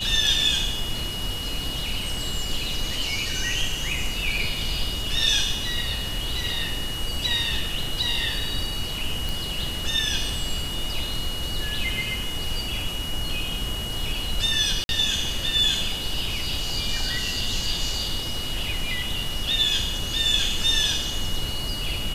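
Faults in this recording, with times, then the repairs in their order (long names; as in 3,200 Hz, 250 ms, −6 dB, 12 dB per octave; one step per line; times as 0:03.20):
whistle 2,900 Hz −31 dBFS
0:09.29: click
0:14.84–0:14.89: drop-out 51 ms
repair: click removal
notch filter 2,900 Hz, Q 30
repair the gap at 0:14.84, 51 ms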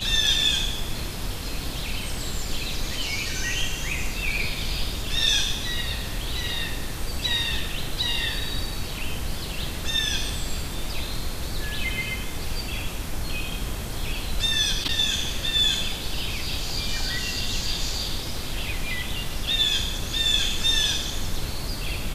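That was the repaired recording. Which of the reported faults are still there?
none of them is left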